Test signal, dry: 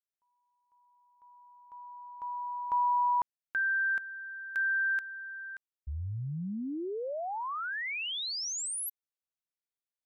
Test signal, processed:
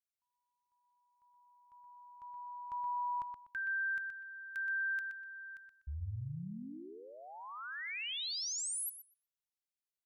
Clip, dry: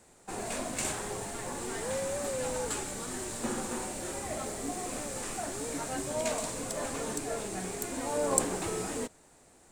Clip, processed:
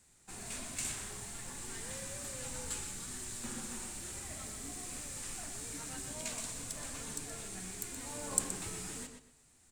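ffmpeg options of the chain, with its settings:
ffmpeg -i in.wav -filter_complex "[0:a]equalizer=frequency=550:width_type=o:width=2.5:gain=-15,asplit=2[link_01][link_02];[link_02]adelay=123,lowpass=frequency=4900:poles=1,volume=-6dB,asplit=2[link_03][link_04];[link_04]adelay=123,lowpass=frequency=4900:poles=1,volume=0.26,asplit=2[link_05][link_06];[link_06]adelay=123,lowpass=frequency=4900:poles=1,volume=0.26[link_07];[link_03][link_05][link_07]amix=inputs=3:normalize=0[link_08];[link_01][link_08]amix=inputs=2:normalize=0,volume=-3dB" out.wav

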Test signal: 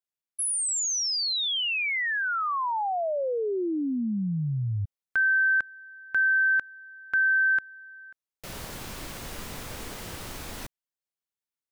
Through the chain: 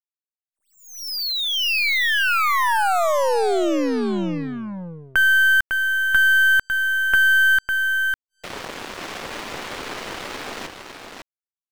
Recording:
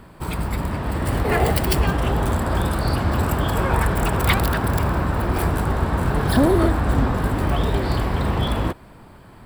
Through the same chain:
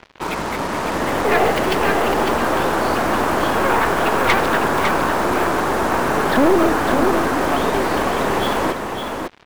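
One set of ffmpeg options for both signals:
ffmpeg -i in.wav -filter_complex "[0:a]acrossover=split=250 3500:gain=0.0794 1 0.0794[link_01][link_02][link_03];[link_01][link_02][link_03]amix=inputs=3:normalize=0,asplit=2[link_04][link_05];[link_05]acompressor=threshold=-36dB:ratio=8:attack=3.9:release=235:knee=6:detection=rms,volume=0.5dB[link_06];[link_04][link_06]amix=inputs=2:normalize=0,aeval=exprs='(tanh(7.08*val(0)+0.55)-tanh(0.55))/7.08':channel_layout=same,acrusher=bits=5:mix=0:aa=0.5,aecho=1:1:553:0.531,volume=8dB" out.wav

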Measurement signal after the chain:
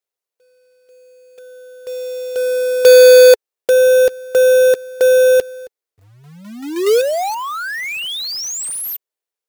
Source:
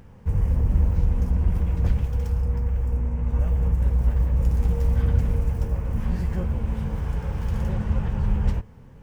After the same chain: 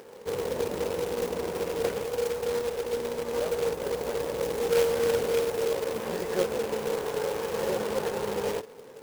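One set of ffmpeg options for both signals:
ffmpeg -i in.wav -af "highpass=frequency=440:width_type=q:width=4.1,acrusher=bits=2:mode=log:mix=0:aa=0.000001,volume=2.5dB" out.wav

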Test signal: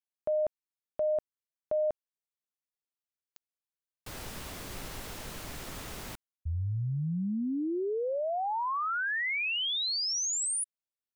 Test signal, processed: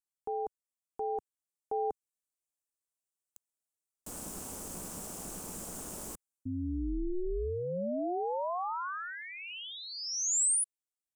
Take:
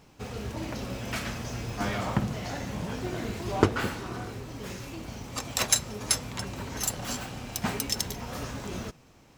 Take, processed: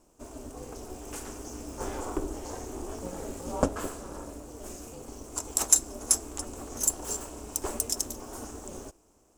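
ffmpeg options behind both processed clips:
ffmpeg -i in.wav -af "aeval=exprs='val(0)*sin(2*PI*180*n/s)':channel_layout=same,dynaudnorm=framelen=510:gausssize=7:maxgain=4.5dB,equalizer=frequency=125:width_type=o:width=1:gain=-9,equalizer=frequency=2000:width_type=o:width=1:gain=-11,equalizer=frequency=4000:width_type=o:width=1:gain=-11,equalizer=frequency=8000:width_type=o:width=1:gain=11,volume=-2dB" out.wav

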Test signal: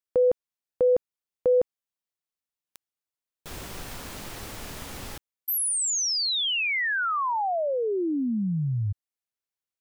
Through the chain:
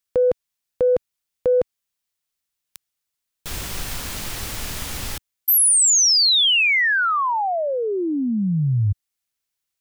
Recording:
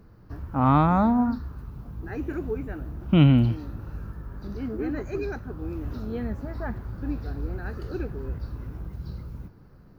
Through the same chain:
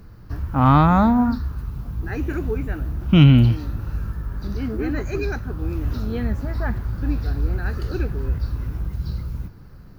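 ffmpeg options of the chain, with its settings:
ffmpeg -i in.wav -filter_complex "[0:a]equalizer=frequency=450:width=0.32:gain=-8,asplit=2[link_01][link_02];[link_02]asoftclip=type=tanh:threshold=-20dB,volume=-5dB[link_03];[link_01][link_03]amix=inputs=2:normalize=0,volume=7.5dB" out.wav

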